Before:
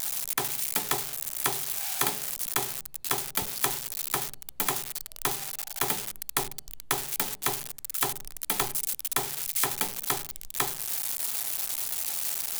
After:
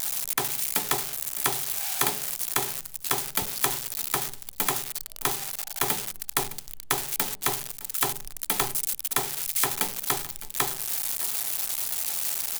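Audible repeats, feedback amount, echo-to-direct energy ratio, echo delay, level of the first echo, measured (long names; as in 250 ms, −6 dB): 1, repeats not evenly spaced, −18.0 dB, 611 ms, −18.0 dB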